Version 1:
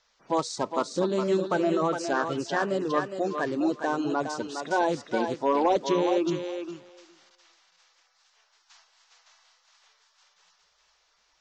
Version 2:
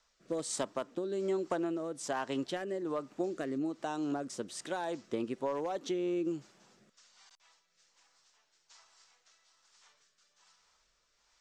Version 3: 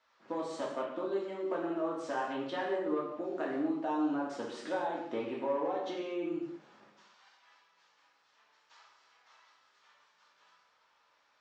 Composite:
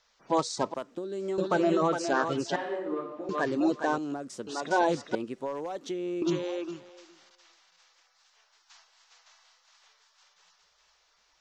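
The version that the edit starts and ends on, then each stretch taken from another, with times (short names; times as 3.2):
1
0.74–1.38 from 2
2.56–3.29 from 3
3.98–4.47 from 2
5.15–6.22 from 2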